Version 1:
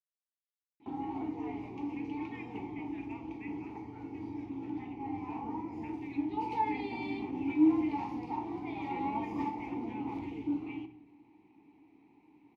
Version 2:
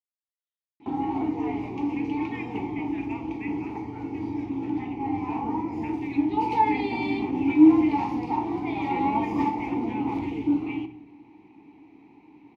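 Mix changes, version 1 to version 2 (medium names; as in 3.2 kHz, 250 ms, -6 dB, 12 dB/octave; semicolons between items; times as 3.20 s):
speech +8.5 dB; background +10.0 dB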